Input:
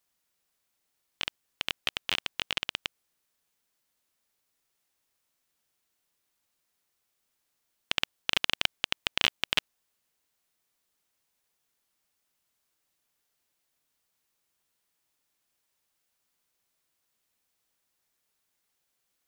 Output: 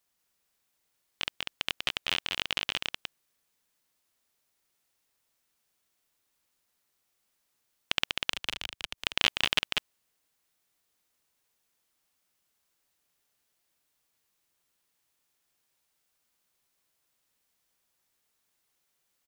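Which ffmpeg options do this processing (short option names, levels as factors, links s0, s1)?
-filter_complex "[0:a]asettb=1/sr,asplit=3[s0][s1][s2];[s0]atrim=end=8.314[s3];[s1]atrim=start=8.31:end=8.98,asetpts=PTS-STARTPTS,afade=t=in:d=0.004:c=qsin,afade=t=out:st=0.666:d=0.004:c=qsin,acrossover=split=100|2700[s4][s5][s6];[s4]acompressor=threshold=0.00316:ratio=4[s7];[s5]acompressor=threshold=0.00891:ratio=4[s8];[s6]acompressor=threshold=0.0141:ratio=4[s9];[s7][s8][s9]amix=inputs=3:normalize=0[s10];[s2]atrim=start=8.976[s11];[s3][s10]acrossfade=d=0.004:c1=hsin:c2=qsin[s12];[s12][s11]acrossfade=d=0.004:c1=qsin:c2=hsin,aecho=1:1:194:0.631"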